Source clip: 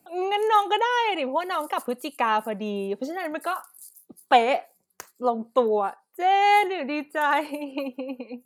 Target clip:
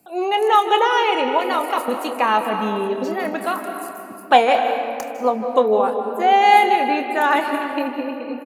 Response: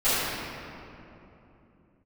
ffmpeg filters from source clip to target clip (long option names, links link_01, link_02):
-filter_complex "[0:a]asplit=2[link_01][link_02];[link_02]adelay=28,volume=-12dB[link_03];[link_01][link_03]amix=inputs=2:normalize=0,asplit=2[link_04][link_05];[1:a]atrim=start_sample=2205,adelay=147[link_06];[link_05][link_06]afir=irnorm=-1:irlink=0,volume=-23dB[link_07];[link_04][link_07]amix=inputs=2:normalize=0,volume=4.5dB"